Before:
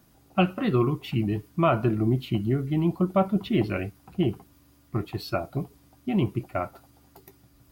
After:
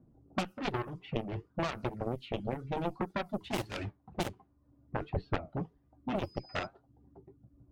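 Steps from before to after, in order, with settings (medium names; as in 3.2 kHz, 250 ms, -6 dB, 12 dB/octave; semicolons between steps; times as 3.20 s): 3.44–4.29 s: block-companded coder 3-bit; reverb removal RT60 0.61 s; level-controlled noise filter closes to 440 Hz, open at -19.5 dBFS; flange 1.9 Hz, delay 7.5 ms, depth 3.7 ms, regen -61%; 6.22–6.65 s: whistle 5 kHz -55 dBFS; Chebyshev shaper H 7 -11 dB, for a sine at -13.5 dBFS; compression 12:1, threshold -34 dBFS, peak gain reduction 16 dB; 5.10–5.50 s: tilt EQ -2 dB/octave; trim +4.5 dB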